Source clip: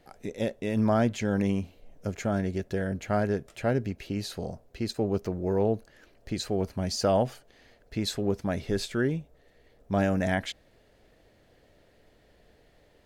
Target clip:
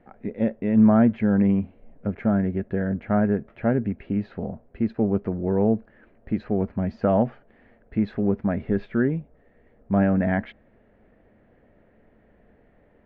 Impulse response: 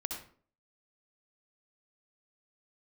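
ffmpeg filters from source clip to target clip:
-af "lowpass=f=2.1k:w=0.5412,lowpass=f=2.1k:w=1.3066,equalizer=f=220:t=o:w=0.48:g=9,volume=2dB"

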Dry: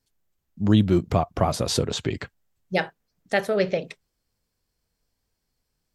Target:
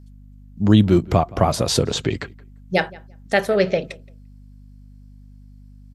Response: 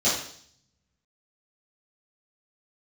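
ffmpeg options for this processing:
-filter_complex "[0:a]aeval=exprs='val(0)+0.00447*(sin(2*PI*50*n/s)+sin(2*PI*2*50*n/s)/2+sin(2*PI*3*50*n/s)/3+sin(2*PI*4*50*n/s)/4+sin(2*PI*5*50*n/s)/5)':c=same,asplit=2[a][b];[b]adelay=172,lowpass=f=2.6k:p=1,volume=-22dB,asplit=2[c][d];[d]adelay=172,lowpass=f=2.6k:p=1,volume=0.17[e];[c][e]amix=inputs=2:normalize=0[f];[a][f]amix=inputs=2:normalize=0,aresample=32000,aresample=44100,volume=4.5dB"

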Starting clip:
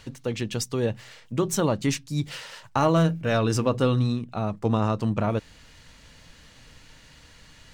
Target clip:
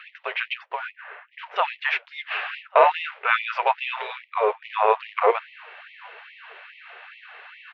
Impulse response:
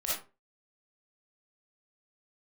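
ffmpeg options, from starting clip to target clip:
-filter_complex "[0:a]asettb=1/sr,asplit=3[a][b][c];[a]atrim=end=0.554[d];[b]atrim=start=0.55:end=1.56,asetpts=PTS-STARTPTS,afade=t=in:d=0.004:c=qsin,afade=t=out:st=1.006:d=0.004:c=qsin,acrossover=split=210 2100:gain=0.0631 1 0.126[e][f][g];[e][f][g]amix=inputs=3:normalize=0[h];[c]atrim=start=1.556[i];[d][h]acrossfade=d=0.004:c1=hsin:c2=qsin[j];[j][i]acrossfade=d=0.004:c1=qsin:c2=hsin,acrossover=split=100|1500[k][l][m];[l]acrusher=bits=5:mode=log:mix=0:aa=0.000001[n];[k][n][m]amix=inputs=3:normalize=0,highpass=f=270:t=q:w=0.5412,highpass=f=270:t=q:w=1.307,lowpass=f=3k:t=q:w=0.5176,lowpass=f=3k:t=q:w=0.7071,lowpass=f=3k:t=q:w=1.932,afreqshift=-210,apsyclip=17.5dB,asplit=2[o][p];[p]adelay=1143,lowpass=f=1.1k:p=1,volume=-22.5dB,asplit=2[q][r];[r]adelay=1143,lowpass=f=1.1k:p=1,volume=0.33[s];[q][s]amix=inputs=2:normalize=0[t];[o][t]amix=inputs=2:normalize=0,afftfilt=real='re*gte(b*sr/1024,380*pow(1900/380,0.5+0.5*sin(2*PI*2.4*pts/sr)))':imag='im*gte(b*sr/1024,380*pow(1900/380,0.5+0.5*sin(2*PI*2.4*pts/sr)))':win_size=1024:overlap=0.75,volume=-4.5dB"

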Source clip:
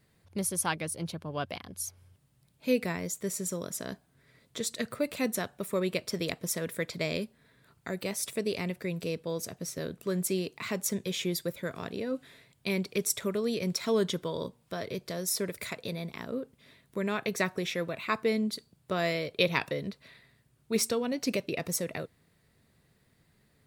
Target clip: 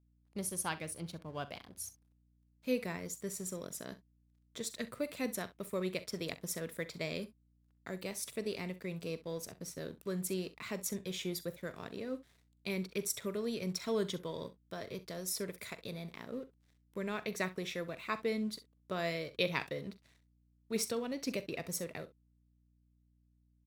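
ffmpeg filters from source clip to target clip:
-af "aeval=exprs='sgn(val(0))*max(abs(val(0))-0.00211,0)':c=same,aecho=1:1:43|65:0.15|0.133,aeval=exprs='val(0)+0.000708*(sin(2*PI*60*n/s)+sin(2*PI*2*60*n/s)/2+sin(2*PI*3*60*n/s)/3+sin(2*PI*4*60*n/s)/4+sin(2*PI*5*60*n/s)/5)':c=same,volume=-6.5dB"

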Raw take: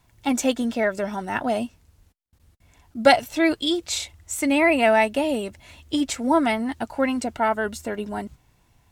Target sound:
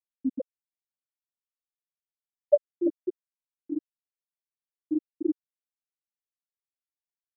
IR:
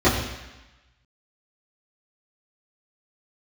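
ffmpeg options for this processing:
-filter_complex "[0:a]acrossover=split=3500[a][b];[b]acrusher=samples=38:mix=1:aa=0.000001:lfo=1:lforange=22.8:lforate=0.31[c];[a][c]amix=inputs=2:normalize=0,afftfilt=real='re*(1-between(b*sr/4096,600,1700))':imag='im*(1-between(b*sr/4096,600,1700))':win_size=4096:overlap=0.75,asetrate=38170,aresample=44100,atempo=1.15535,equalizer=f=2.5k:t=o:w=2.9:g=-10.5,aecho=1:1:405:0.355,afftfilt=real='re*gte(hypot(re,im),1.12)':imag='im*gte(hypot(re,im),1.12)':win_size=1024:overlap=0.75,asetrate=53361,aresample=44100"

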